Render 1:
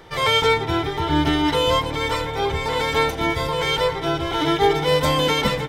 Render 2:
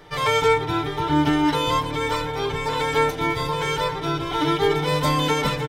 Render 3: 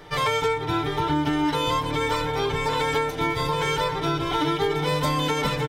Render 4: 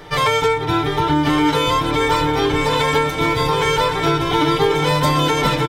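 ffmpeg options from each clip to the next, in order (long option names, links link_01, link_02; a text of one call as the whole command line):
ffmpeg -i in.wav -af "aecho=1:1:6.8:0.6,volume=-3dB" out.wav
ffmpeg -i in.wav -af "acompressor=threshold=-22dB:ratio=6,volume=2dB" out.wav
ffmpeg -i in.wav -af "aecho=1:1:1119:0.422,volume=6.5dB" out.wav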